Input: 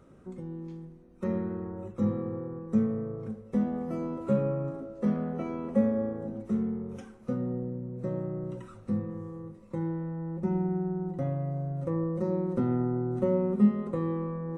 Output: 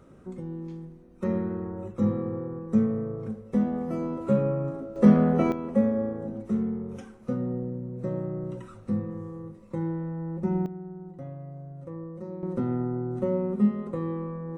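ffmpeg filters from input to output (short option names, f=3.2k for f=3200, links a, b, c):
-af "asetnsamples=n=441:p=0,asendcmd='4.96 volume volume 11dB;5.52 volume volume 2dB;10.66 volume volume -8.5dB;12.43 volume volume -0.5dB',volume=3dB"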